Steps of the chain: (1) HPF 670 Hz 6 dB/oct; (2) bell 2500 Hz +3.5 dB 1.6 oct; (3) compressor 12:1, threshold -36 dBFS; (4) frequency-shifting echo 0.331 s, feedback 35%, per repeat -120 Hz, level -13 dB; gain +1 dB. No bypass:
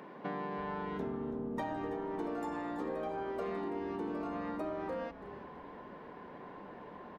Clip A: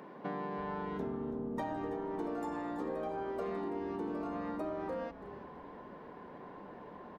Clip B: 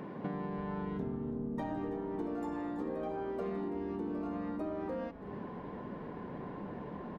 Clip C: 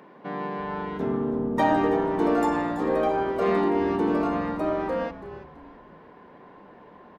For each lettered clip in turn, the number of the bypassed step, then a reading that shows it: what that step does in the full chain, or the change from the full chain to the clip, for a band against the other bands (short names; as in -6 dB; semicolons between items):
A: 2, 4 kHz band -2.5 dB; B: 1, 125 Hz band +7.0 dB; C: 3, mean gain reduction 8.5 dB